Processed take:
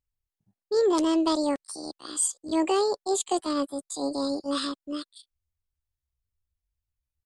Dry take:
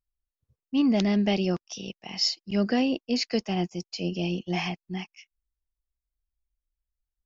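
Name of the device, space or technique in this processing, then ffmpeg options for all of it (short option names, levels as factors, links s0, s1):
chipmunk voice: -af "asetrate=70004,aresample=44100,atempo=0.629961"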